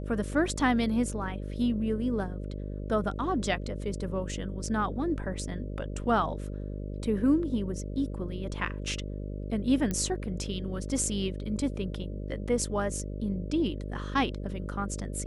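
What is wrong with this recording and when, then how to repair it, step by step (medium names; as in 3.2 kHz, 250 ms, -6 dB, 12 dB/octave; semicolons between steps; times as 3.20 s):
buzz 50 Hz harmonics 12 -36 dBFS
9.91 s: pop -18 dBFS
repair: de-click; de-hum 50 Hz, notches 12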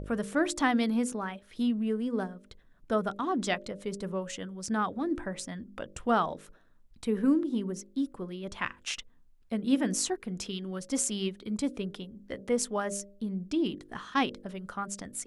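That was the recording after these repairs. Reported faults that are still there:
nothing left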